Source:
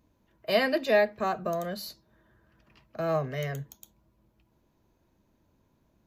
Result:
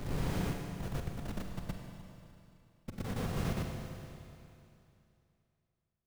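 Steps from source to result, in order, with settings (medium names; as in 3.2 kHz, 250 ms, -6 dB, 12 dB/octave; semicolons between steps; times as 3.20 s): tape start-up on the opening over 1.98 s; inverse Chebyshev low-pass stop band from 970 Hz, stop band 80 dB; upward compressor, threshold -39 dBFS; tremolo 10 Hz, depth 36%; Schmitt trigger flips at -36.5 dBFS; whisper effect; reverse echo 118 ms -3 dB; Schroeder reverb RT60 2.8 s, combs from 33 ms, DRR 2.5 dB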